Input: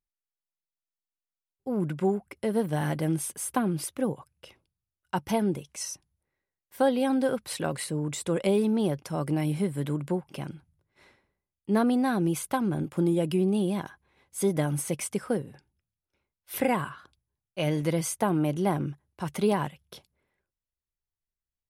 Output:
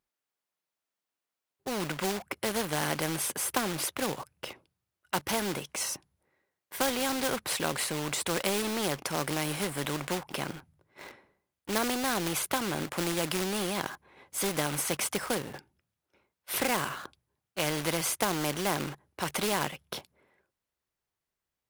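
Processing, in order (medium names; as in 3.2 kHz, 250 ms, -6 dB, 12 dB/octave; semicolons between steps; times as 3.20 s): high-pass 300 Hz 6 dB/octave; treble shelf 2.5 kHz -9 dB; in parallel at -6 dB: companded quantiser 4-bit; on the sum: spectrum-flattening compressor 2:1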